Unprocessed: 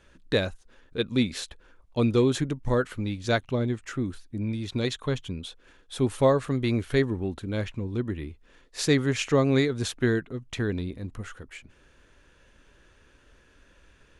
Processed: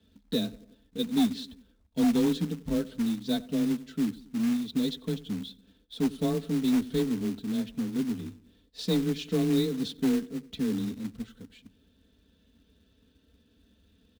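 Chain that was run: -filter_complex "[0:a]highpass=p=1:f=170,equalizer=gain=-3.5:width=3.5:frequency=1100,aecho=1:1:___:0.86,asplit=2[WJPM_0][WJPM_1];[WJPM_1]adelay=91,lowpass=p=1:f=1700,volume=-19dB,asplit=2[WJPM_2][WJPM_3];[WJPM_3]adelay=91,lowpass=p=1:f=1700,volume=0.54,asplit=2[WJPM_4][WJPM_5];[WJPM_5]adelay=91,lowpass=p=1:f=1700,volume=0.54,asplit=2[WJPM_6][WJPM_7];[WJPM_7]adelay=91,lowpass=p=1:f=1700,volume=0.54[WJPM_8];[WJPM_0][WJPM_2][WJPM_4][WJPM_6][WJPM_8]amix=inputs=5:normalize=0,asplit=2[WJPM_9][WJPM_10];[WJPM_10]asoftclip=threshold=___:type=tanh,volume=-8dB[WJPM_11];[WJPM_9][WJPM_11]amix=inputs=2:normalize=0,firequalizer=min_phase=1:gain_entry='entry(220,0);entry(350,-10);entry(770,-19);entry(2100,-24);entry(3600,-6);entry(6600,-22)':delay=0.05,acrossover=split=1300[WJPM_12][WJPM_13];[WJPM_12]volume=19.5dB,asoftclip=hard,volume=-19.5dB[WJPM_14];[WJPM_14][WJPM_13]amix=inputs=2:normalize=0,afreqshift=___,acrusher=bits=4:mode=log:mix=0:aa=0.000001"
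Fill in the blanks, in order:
4.6, -18dB, 21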